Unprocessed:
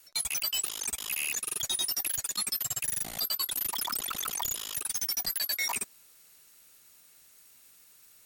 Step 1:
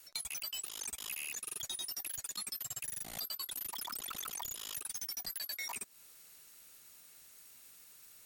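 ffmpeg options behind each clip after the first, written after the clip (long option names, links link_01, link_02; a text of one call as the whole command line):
ffmpeg -i in.wav -af "acompressor=threshold=-39dB:ratio=5" out.wav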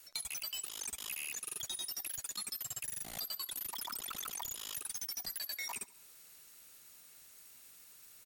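ffmpeg -i in.wav -af "aecho=1:1:69|138|207|276:0.0891|0.0508|0.029|0.0165" out.wav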